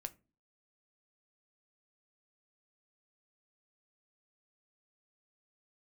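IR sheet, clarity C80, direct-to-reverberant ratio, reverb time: 28.0 dB, 9.0 dB, not exponential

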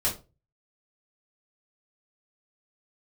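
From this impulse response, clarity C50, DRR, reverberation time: 11.0 dB, -6.0 dB, 0.30 s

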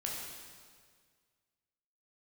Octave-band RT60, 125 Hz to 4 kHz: 2.1, 1.9, 1.9, 1.7, 1.7, 1.6 s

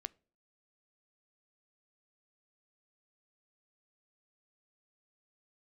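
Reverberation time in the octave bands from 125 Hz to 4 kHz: 0.45, 0.55, 0.50, 0.35, 0.35, 0.35 s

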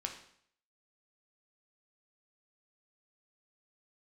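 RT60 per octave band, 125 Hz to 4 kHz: 0.65, 0.60, 0.60, 0.60, 0.60, 0.60 s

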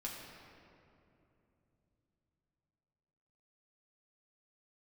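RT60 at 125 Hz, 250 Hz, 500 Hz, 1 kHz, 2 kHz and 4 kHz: 5.1, 4.2, 3.3, 2.6, 2.1, 1.5 s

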